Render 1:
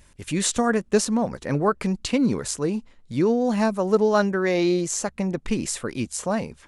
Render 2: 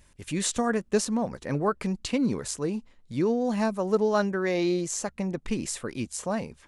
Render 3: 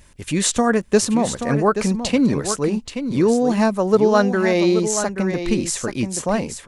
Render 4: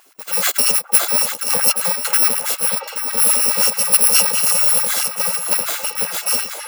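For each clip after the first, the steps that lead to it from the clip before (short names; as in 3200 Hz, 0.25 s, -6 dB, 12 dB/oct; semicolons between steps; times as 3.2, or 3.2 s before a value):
notch 1400 Hz, Q 30; gain -4.5 dB
echo 0.829 s -9 dB; gain +8.5 dB
FFT order left unsorted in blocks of 128 samples; delay with a stepping band-pass 0.562 s, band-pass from 790 Hz, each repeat 0.7 oct, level -3 dB; LFO high-pass sine 9.4 Hz 310–1700 Hz; gain +1.5 dB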